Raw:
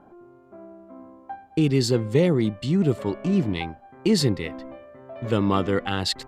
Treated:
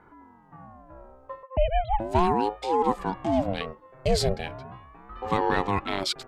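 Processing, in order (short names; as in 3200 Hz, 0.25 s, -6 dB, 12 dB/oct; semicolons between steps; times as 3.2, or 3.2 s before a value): 1.43–2 sine-wave speech; ring modulator with a swept carrier 450 Hz, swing 45%, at 0.37 Hz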